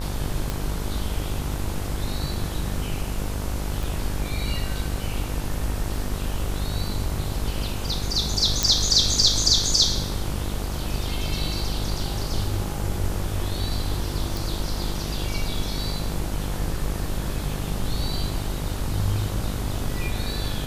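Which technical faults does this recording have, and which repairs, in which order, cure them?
buzz 50 Hz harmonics 31 -30 dBFS
0.5 pop
3.83 pop
8.63 pop
14.37 pop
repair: de-click; de-hum 50 Hz, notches 31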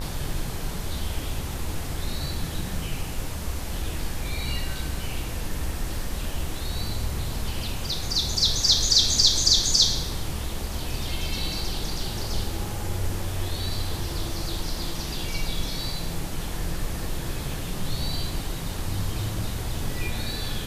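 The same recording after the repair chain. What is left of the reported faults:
3.83 pop

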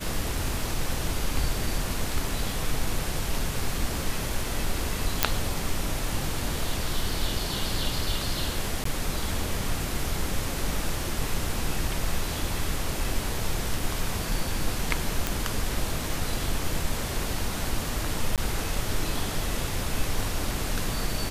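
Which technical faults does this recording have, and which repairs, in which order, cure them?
5.23 pop 0 dBFS
8.84–8.85 gap 14 ms
15.27 pop
18.36–18.38 gap 17 ms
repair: de-click; interpolate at 8.84, 14 ms; interpolate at 18.36, 17 ms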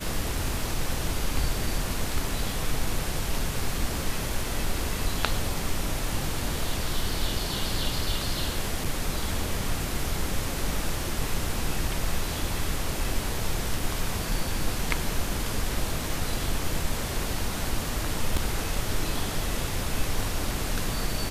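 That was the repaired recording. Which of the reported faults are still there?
none

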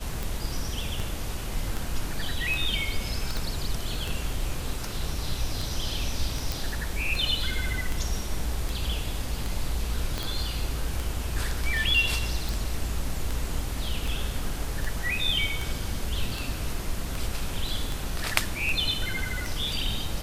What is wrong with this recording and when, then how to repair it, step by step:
tick 78 rpm
3.37 pop
6.52 pop
10.18 pop -15 dBFS
12.49 pop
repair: de-click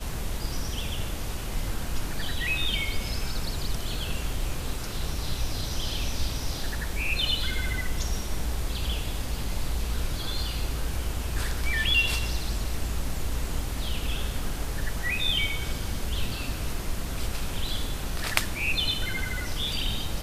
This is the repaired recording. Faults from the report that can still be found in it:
3.37 pop
10.18 pop

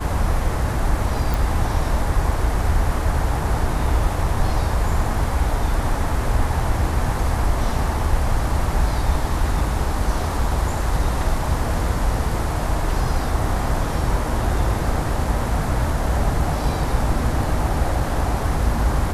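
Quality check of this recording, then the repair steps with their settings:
1.34 pop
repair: de-click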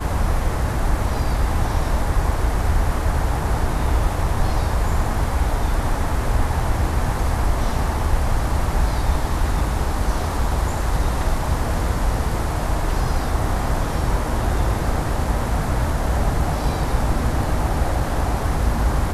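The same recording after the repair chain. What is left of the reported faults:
none

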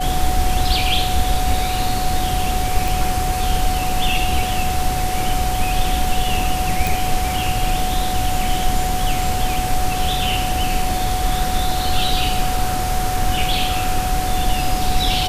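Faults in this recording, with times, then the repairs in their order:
tone 740 Hz -22 dBFS
2.88 pop
6.87 pop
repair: de-click; notch 740 Hz, Q 30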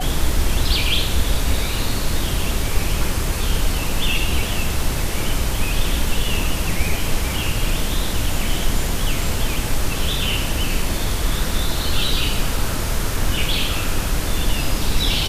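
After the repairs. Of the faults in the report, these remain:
none

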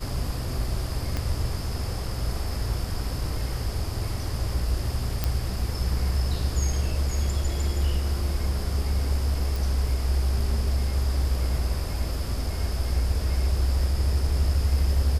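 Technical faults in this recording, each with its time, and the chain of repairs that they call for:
1.17 pop -14 dBFS
5.24 pop -10 dBFS
9.56 pop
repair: de-click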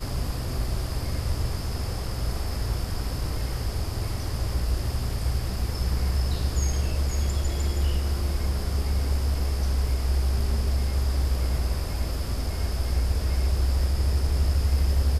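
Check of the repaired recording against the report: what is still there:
1.17 pop

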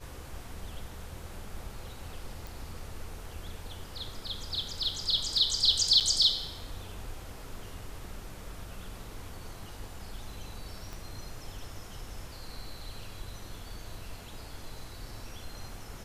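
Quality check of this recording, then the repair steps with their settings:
2.47 pop
6–6.01 gap 7.6 ms
10.93 pop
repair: de-click; interpolate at 6, 7.6 ms

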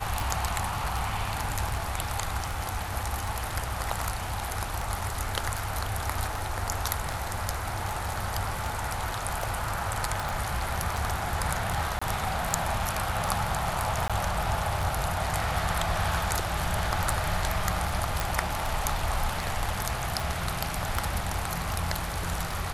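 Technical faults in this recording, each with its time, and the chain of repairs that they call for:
tick 78 rpm
10.29 pop
11.99–12.02 gap 25 ms
14.08–14.1 gap 16 ms
18.2 pop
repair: de-click; interpolate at 11.99, 25 ms; interpolate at 14.08, 16 ms

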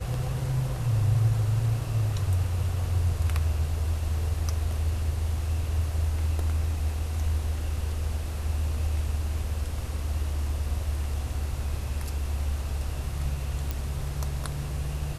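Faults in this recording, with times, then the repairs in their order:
13.71 pop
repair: de-click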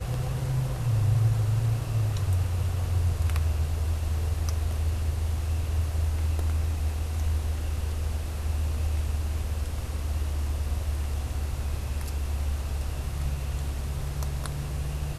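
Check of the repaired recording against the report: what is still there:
none

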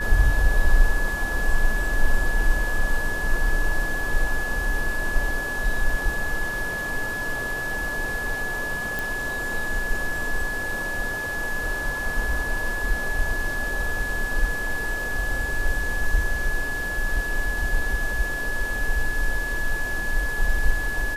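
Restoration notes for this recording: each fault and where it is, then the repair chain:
tone 1700 Hz -27 dBFS
8.99 pop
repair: de-click; notch 1700 Hz, Q 30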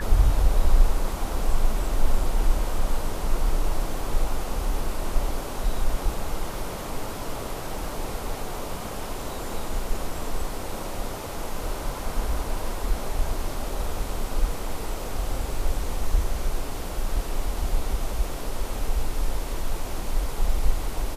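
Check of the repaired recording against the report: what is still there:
none

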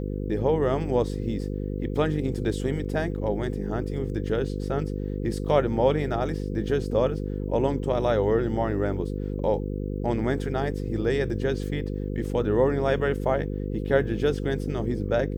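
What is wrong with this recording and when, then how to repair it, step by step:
buzz 50 Hz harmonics 10 -30 dBFS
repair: de-hum 50 Hz, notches 10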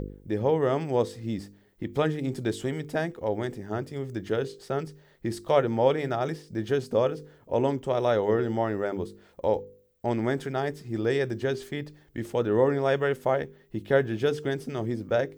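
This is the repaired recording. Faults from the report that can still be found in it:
none

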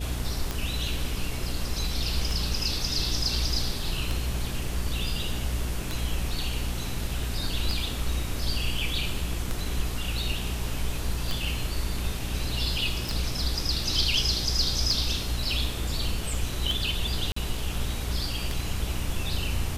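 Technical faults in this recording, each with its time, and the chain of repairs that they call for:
hum 60 Hz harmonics 7 -33 dBFS
tick 33 1/3 rpm -14 dBFS
13.09 pop
17.32–17.36 gap 44 ms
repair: de-click; de-hum 60 Hz, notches 7; interpolate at 17.32, 44 ms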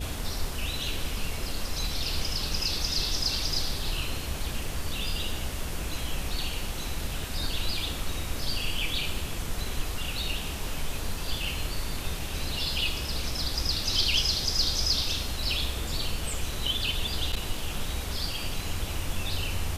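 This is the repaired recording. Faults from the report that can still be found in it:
none

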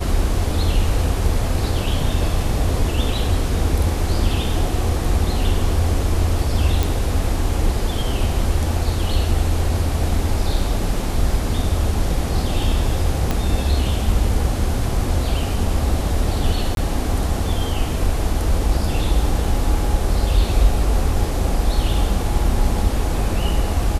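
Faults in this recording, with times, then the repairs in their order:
6.83 pop
13.31 pop -6 dBFS
16.75–16.77 gap 22 ms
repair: de-click; interpolate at 16.75, 22 ms

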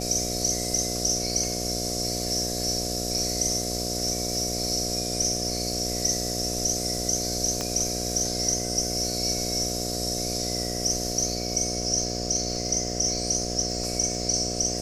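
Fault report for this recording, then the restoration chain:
buzz 60 Hz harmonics 12 -32 dBFS
crackle 57/s -36 dBFS
7.61 pop -14 dBFS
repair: de-click; de-hum 60 Hz, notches 12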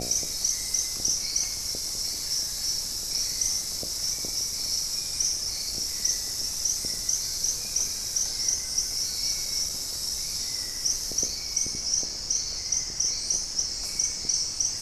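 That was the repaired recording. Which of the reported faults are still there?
none

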